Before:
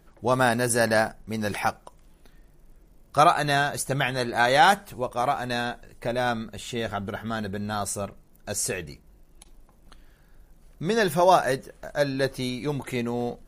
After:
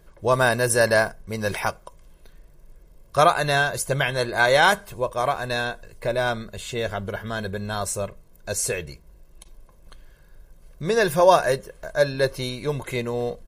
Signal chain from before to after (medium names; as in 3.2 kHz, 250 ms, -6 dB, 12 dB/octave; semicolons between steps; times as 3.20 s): comb 1.9 ms, depth 51%; trim +1.5 dB